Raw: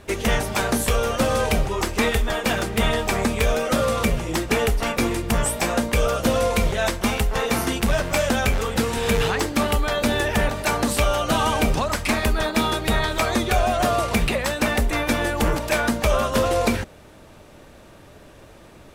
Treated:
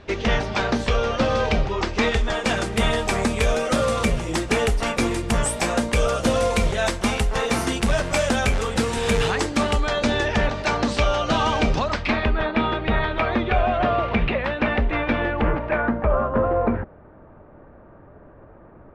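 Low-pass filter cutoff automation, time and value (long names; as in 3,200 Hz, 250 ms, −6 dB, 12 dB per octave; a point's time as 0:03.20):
low-pass filter 24 dB per octave
0:01.82 5,200 Hz
0:02.73 10,000 Hz
0:09.23 10,000 Hz
0:10.43 5,800 Hz
0:11.81 5,800 Hz
0:12.35 3,000 Hz
0:15.17 3,000 Hz
0:16.16 1,500 Hz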